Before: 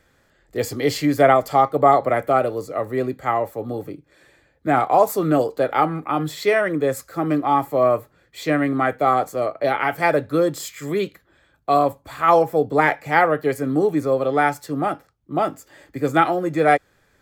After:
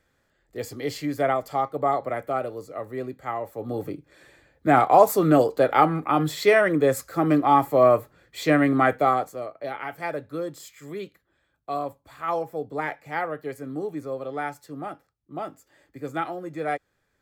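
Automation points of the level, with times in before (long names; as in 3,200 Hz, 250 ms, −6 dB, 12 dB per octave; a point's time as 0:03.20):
0:03.41 −9 dB
0:03.85 +0.5 dB
0:08.94 +0.5 dB
0:09.48 −12 dB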